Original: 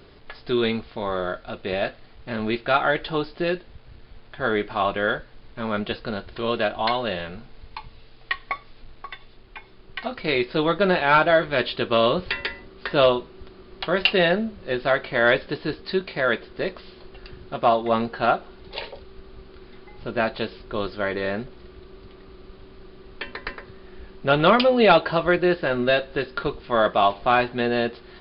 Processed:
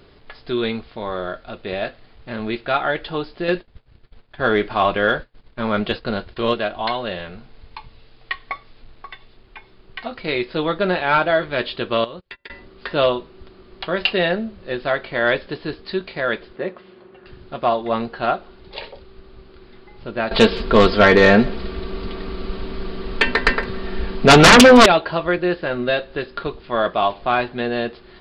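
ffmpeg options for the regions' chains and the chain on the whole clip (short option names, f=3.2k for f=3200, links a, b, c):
-filter_complex "[0:a]asettb=1/sr,asplit=3[a][b][c];[a]atrim=end=3.484[d];[b]atrim=start=3.48:end=6.54,asetpts=PTS-STARTPTS,afade=t=in:d=0.004:c=qsin,afade=t=out:st=3.056:d=0.004:c=qsin,agate=range=-33dB:threshold=-36dB:ratio=3:release=100:detection=peak,acontrast=38[e];[c]atrim=start=6.536[f];[d][e]acrossfade=d=0.004:c1=hsin:c2=qsin[g];[g][f]acrossfade=d=0.004:c1=qsin:c2=hsin,asettb=1/sr,asplit=3[h][i][j];[h]atrim=end=12.044[k];[i]atrim=start=12.04:end=12.5,asetpts=PTS-STARTPTS,afade=t=in:d=0.004:c=qsin,afade=t=out:st=0.456:d=0.004:c=qsin,agate=range=-36dB:threshold=-26dB:ratio=16:release=100:detection=peak,acompressor=threshold=-33dB:ratio=4:attack=3.2:release=140:knee=1:detection=peak[l];[j]atrim=start=12.496[m];[k][l]acrossfade=d=0.004:c1=hsin:c2=qsin[n];[n][m]acrossfade=d=0.004:c1=qsin:c2=hsin,asettb=1/sr,asplit=3[o][p][q];[o]atrim=end=16.564[r];[p]atrim=start=16.56:end=17.27,asetpts=PTS-STARTPTS,afade=t=in:d=0.004:c=qsin,afade=t=out:st=0.706:d=0.004:c=qsin,highpass=140,lowpass=2.2k,aecho=1:1:5.5:0.33,atrim=end_sample=31311[s];[q]atrim=start=17.266[t];[r][s]acrossfade=d=0.004:c1=hsin:c2=qsin[u];[u][t]acrossfade=d=0.004:c1=qsin:c2=hsin,asettb=1/sr,asplit=3[v][w][x];[v]atrim=end=20.314[y];[w]atrim=start=20.31:end=24.86,asetpts=PTS-STARTPTS,afade=t=in:d=0.004:c=qsin,afade=t=out:st=4.546:d=0.004:c=qsin,aecho=1:1:4.4:0.43,atrim=end_sample=200655,aeval=exprs='0.631*sin(PI/2*3.98*val(0)/0.631)':c=same,aecho=1:1:162:0.0708,atrim=end_sample=200655[z];[x]atrim=start=24.856[aa];[y][z]acrossfade=d=0.004:c1=hsin:c2=qsin[ab];[ab][aa]acrossfade=d=0.004:c1=qsin:c2=hsin"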